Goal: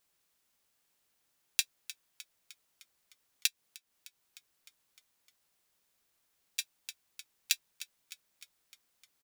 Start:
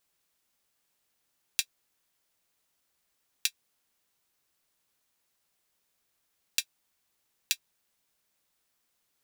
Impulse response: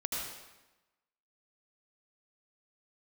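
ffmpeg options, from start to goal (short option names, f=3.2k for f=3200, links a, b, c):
-filter_complex "[0:a]asplit=7[a][b][c][d][e][f][g];[b]adelay=305,afreqshift=-66,volume=-15dB[h];[c]adelay=610,afreqshift=-132,volume=-19.7dB[i];[d]adelay=915,afreqshift=-198,volume=-24.5dB[j];[e]adelay=1220,afreqshift=-264,volume=-29.2dB[k];[f]adelay=1525,afreqshift=-330,volume=-33.9dB[l];[g]adelay=1830,afreqshift=-396,volume=-38.7dB[m];[a][h][i][j][k][l][m]amix=inputs=7:normalize=0,asettb=1/sr,asplit=3[n][o][p];[n]atrim=end=3.474[q];[o]atrim=start=3.47:end=6.59,asetpts=PTS-STARTPTS,afade=t=in:d=0.004:c=qsin,afade=t=out:st=3.116:d=0.004:c=qsin,acompressor=threshold=-48dB:ratio=6[r];[p]atrim=start=6.586[s];[q][r]acrossfade=d=0.004:c1=hsin:c2=qsin[t];[t][s]acrossfade=d=0.004:c1=qsin:c2=hsin"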